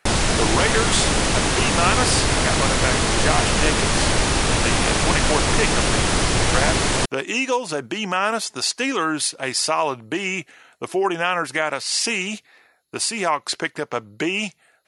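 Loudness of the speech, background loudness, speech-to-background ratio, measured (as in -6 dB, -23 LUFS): -23.5 LUFS, -19.0 LUFS, -4.5 dB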